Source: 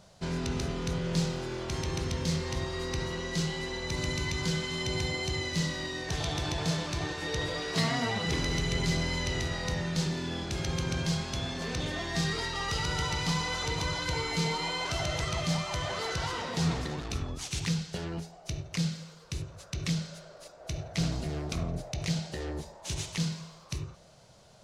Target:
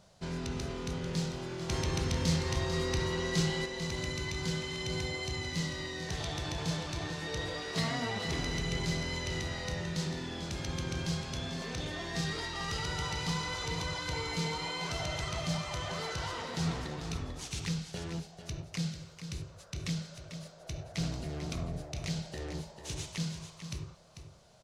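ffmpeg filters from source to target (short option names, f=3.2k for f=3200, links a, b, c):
-filter_complex "[0:a]asettb=1/sr,asplit=3[a][b][c];[a]atrim=end=1.694[d];[b]atrim=start=1.69:end=3.66,asetpts=PTS-STARTPTS,afade=t=in:d=0.004:c=qsin,afade=t=out:st=1.966:d=0.004:c=qsin,acontrast=31[e];[c]atrim=start=3.656[f];[d][e]acrossfade=d=0.004:c1=hsin:c2=qsin[g];[g][f]acrossfade=d=0.004:c1=qsin:c2=hsin,aecho=1:1:444:0.335,volume=-4.5dB"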